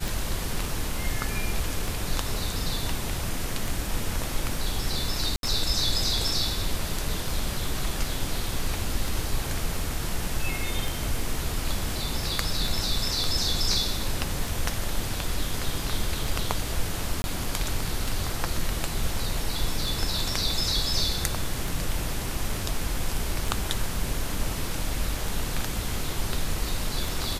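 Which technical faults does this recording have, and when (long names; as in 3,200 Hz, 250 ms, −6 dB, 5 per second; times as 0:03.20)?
scratch tick 33 1/3 rpm
0:05.36–0:05.43: drop-out 72 ms
0:17.22–0:17.24: drop-out 21 ms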